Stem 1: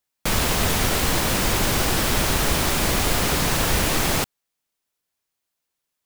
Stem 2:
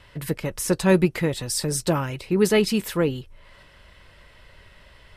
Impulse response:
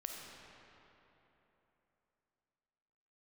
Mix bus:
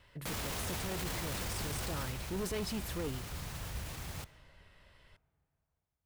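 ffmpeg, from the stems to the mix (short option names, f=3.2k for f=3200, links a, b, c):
-filter_complex "[0:a]alimiter=limit=-17.5dB:level=0:latency=1:release=78,highpass=62,asubboost=boost=7.5:cutoff=110,volume=-8dB,afade=t=out:st=1.75:d=0.4:silence=0.281838,asplit=2[a][b];[b]volume=-12dB[c];[1:a]asoftclip=type=tanh:threshold=-21dB,volume=-11.5dB[d];[2:a]atrim=start_sample=2205[e];[c][e]afir=irnorm=-1:irlink=0[f];[a][d][f]amix=inputs=3:normalize=0,alimiter=level_in=5dB:limit=-24dB:level=0:latency=1:release=14,volume=-5dB"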